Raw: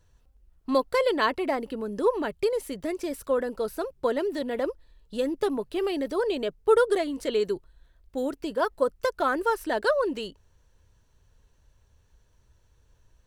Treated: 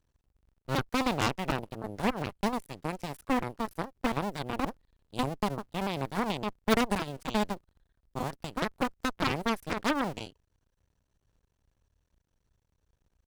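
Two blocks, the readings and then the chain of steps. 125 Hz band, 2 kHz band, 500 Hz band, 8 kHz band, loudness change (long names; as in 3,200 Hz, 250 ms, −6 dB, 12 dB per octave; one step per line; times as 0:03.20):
can't be measured, −2.5 dB, −10.5 dB, +1.5 dB, −5.0 dB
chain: sub-harmonics by changed cycles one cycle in 2, muted
harmonic generator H 3 −14 dB, 8 −14 dB, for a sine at −9 dBFS
level −1.5 dB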